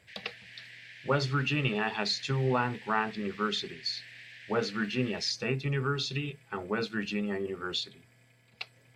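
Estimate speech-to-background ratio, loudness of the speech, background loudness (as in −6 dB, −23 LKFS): 16.0 dB, −31.5 LKFS, −47.5 LKFS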